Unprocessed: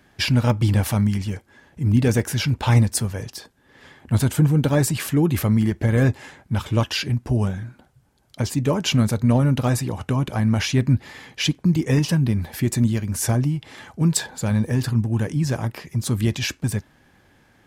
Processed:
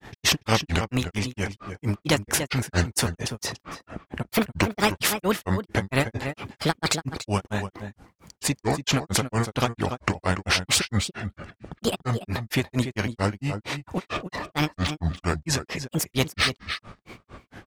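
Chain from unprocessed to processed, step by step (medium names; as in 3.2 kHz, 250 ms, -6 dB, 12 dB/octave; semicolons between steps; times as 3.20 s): treble shelf 7.3 kHz -8.5 dB; granulator 147 ms, grains 4.4 per s, pitch spread up and down by 7 st; delay 287 ms -15.5 dB; spectrum-flattening compressor 2:1; trim +1.5 dB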